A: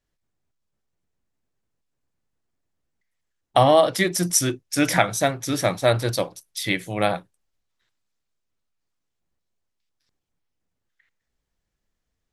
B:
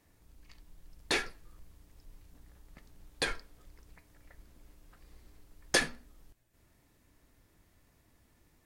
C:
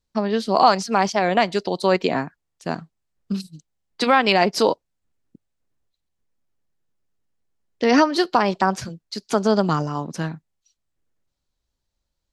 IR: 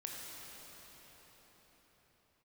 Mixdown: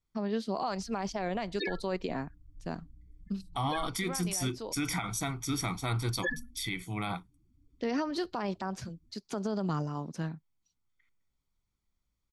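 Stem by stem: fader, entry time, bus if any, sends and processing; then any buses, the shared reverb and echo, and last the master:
-10.0 dB, 0.00 s, no send, peak limiter -8.5 dBFS, peak gain reduction 6.5 dB; comb 0.9 ms, depth 100%
+3.0 dB, 0.50 s, no send, loudest bins only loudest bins 8
-13.0 dB, 0.00 s, no send, bass shelf 330 Hz +6.5 dB; auto duck -12 dB, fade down 0.25 s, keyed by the first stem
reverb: none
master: peak limiter -23 dBFS, peak gain reduction 8.5 dB

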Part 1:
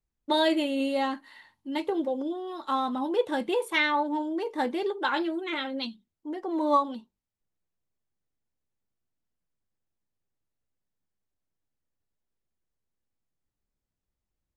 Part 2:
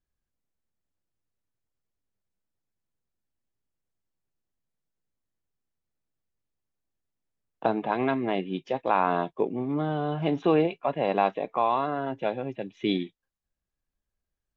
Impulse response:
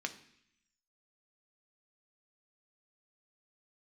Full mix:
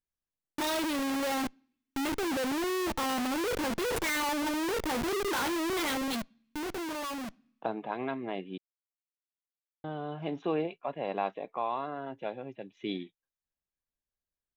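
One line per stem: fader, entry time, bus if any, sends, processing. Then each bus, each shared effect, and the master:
+1.0 dB, 0.30 s, send -22.5 dB, peaking EQ 66 Hz +9.5 dB 1.9 oct; Schmitt trigger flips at -39 dBFS; auto duck -9 dB, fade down 1.85 s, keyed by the second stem
-8.0 dB, 0.00 s, muted 8.58–9.84 s, no send, none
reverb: on, RT60 0.70 s, pre-delay 3 ms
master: bass shelf 140 Hz -5.5 dB

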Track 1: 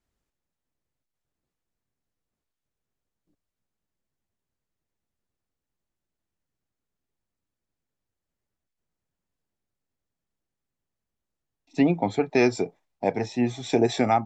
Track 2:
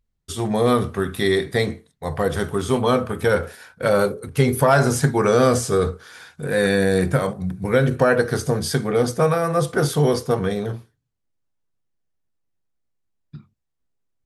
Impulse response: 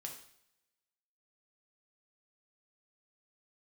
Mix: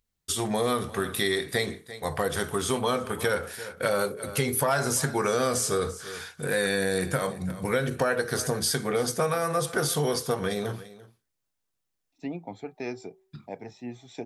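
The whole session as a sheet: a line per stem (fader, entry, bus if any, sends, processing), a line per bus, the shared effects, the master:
-14.0 dB, 0.45 s, no send, no echo send, de-hum 380.9 Hz, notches 3
0.0 dB, 0.00 s, no send, echo send -20 dB, tilt EQ +2 dB/octave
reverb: none
echo: delay 341 ms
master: compression 2.5:1, threshold -25 dBFS, peak gain reduction 9.5 dB

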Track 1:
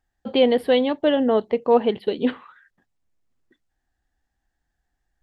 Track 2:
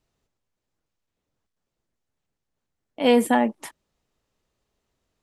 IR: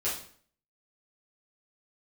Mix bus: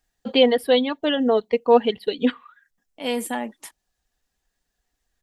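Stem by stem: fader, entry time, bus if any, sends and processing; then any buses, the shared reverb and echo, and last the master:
-1.5 dB, 0.00 s, no send, reverb removal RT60 1.3 s; comb 4.2 ms, depth 45%
-9.0 dB, 0.00 s, no send, none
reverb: none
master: treble shelf 2.5 kHz +10.5 dB

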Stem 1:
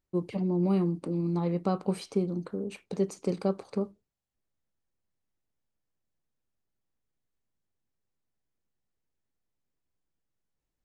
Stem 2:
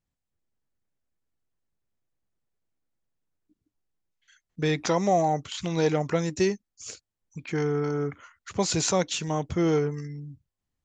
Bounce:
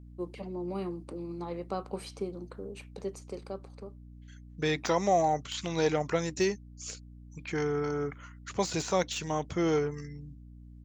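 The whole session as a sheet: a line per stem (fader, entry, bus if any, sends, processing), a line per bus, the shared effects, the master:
-2.5 dB, 0.05 s, no send, high-pass 230 Hz; auto duck -11 dB, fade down 1.45 s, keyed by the second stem
-1.0 dB, 0.00 s, no send, de-esser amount 70%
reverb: none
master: bass shelf 270 Hz -8 dB; hum 60 Hz, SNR 16 dB

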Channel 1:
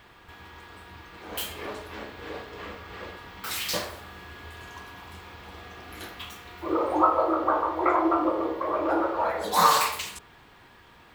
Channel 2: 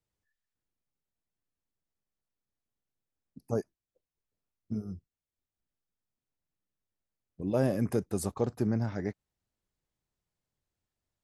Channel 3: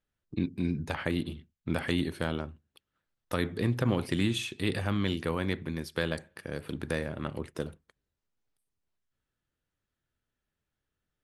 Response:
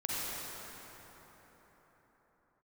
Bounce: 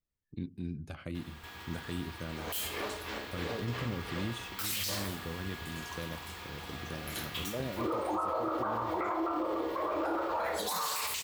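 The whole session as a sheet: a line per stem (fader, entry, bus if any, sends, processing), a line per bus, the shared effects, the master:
-2.0 dB, 1.15 s, no send, treble shelf 3.3 kHz +10 dB; endings held to a fixed fall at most 110 dB/s
-10.0 dB, 0.00 s, no send, none
-11.0 dB, 0.00 s, no send, bass shelf 190 Hz +6.5 dB; Shepard-style phaser falling 0.83 Hz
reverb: none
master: peak limiter -25 dBFS, peak gain reduction 18 dB

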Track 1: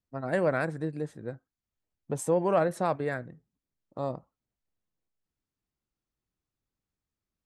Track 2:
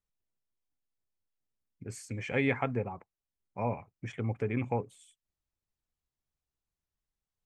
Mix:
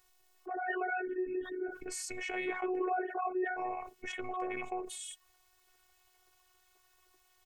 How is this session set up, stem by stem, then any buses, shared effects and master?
-4.0 dB, 0.35 s, no send, formants replaced by sine waves; hum notches 50/100/150/200 Hz; three-phase chorus
-14.5 dB, 0.00 s, no send, resonant low shelf 380 Hz -11.5 dB, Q 1.5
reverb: none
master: robot voice 366 Hz; level flattener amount 70%

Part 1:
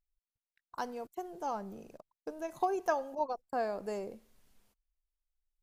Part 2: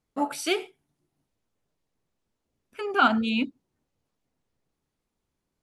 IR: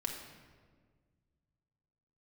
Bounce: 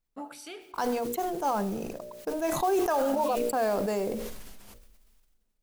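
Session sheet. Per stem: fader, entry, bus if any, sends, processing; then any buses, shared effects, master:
+1.5 dB, 0.00 s, send -23.5 dB, hum notches 60/120/180/240/300/360/420/480/540/600 Hz; modulation noise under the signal 21 dB; decay stretcher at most 30 dB/s
-12.0 dB, 0.00 s, send -14.5 dB, peak limiter -19.5 dBFS, peak gain reduction 11 dB; auto duck -12 dB, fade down 0.25 s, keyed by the first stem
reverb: on, RT60 1.6 s, pre-delay 4 ms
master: level rider gain up to 6.5 dB; peak limiter -18.5 dBFS, peak gain reduction 9 dB

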